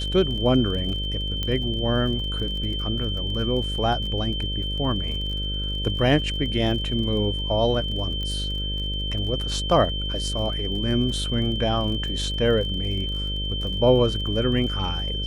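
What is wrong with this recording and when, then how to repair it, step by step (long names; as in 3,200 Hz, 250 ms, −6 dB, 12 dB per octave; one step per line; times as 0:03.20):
mains buzz 50 Hz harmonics 12 −29 dBFS
surface crackle 37 per second −33 dBFS
whistle 3,100 Hz −29 dBFS
0:01.43: click −14 dBFS
0:08.23: click −20 dBFS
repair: click removal
hum removal 50 Hz, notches 12
notch filter 3,100 Hz, Q 30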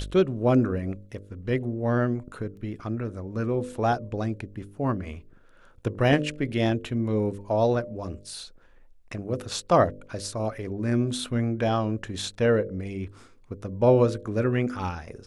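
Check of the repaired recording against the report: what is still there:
none of them is left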